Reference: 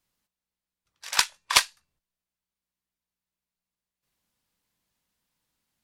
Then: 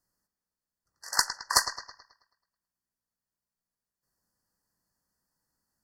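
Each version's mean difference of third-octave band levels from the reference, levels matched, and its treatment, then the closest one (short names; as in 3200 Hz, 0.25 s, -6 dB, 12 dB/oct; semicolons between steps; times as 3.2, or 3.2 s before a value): 8.5 dB: brick-wall FIR band-stop 2000–4200 Hz; on a send: analogue delay 0.108 s, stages 4096, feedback 45%, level -11 dB; on the sum: gain -1.5 dB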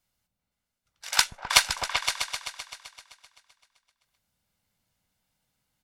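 4.0 dB: comb 1.4 ms, depth 35%; repeats that get brighter 0.129 s, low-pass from 200 Hz, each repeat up 2 oct, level 0 dB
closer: second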